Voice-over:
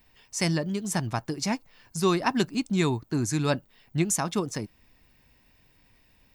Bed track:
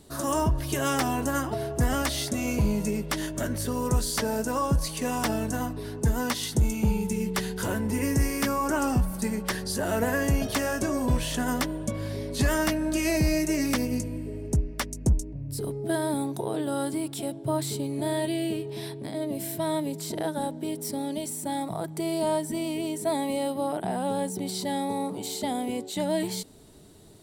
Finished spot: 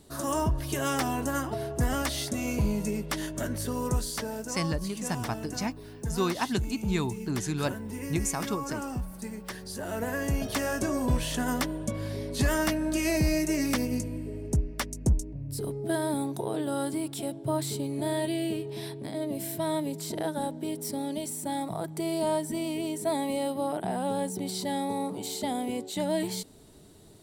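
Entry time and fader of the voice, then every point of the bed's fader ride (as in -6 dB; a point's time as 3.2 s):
4.15 s, -4.5 dB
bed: 3.86 s -2.5 dB
4.53 s -9.5 dB
9.53 s -9.5 dB
10.73 s -1.5 dB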